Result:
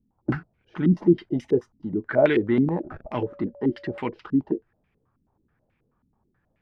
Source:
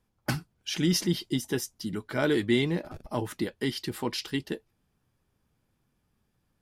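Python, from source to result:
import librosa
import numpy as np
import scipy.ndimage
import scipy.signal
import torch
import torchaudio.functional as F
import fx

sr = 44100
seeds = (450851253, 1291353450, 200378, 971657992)

y = fx.dmg_tone(x, sr, hz=570.0, level_db=-48.0, at=(3.14, 3.99), fade=0.02)
y = fx.filter_held_lowpass(y, sr, hz=9.3, low_hz=250.0, high_hz=2300.0)
y = F.gain(torch.from_numpy(y), 1.5).numpy()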